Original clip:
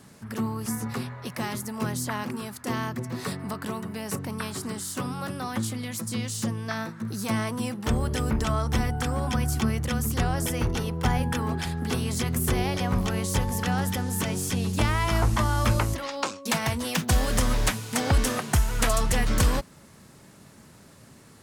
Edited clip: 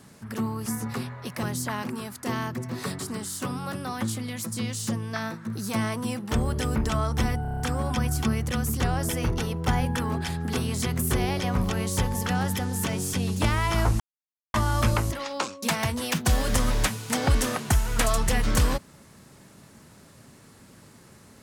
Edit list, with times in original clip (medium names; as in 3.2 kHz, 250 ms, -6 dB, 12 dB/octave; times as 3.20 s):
1.43–1.84 s: delete
3.40–4.54 s: delete
8.97 s: stutter 0.03 s, 7 plays
15.37 s: insert silence 0.54 s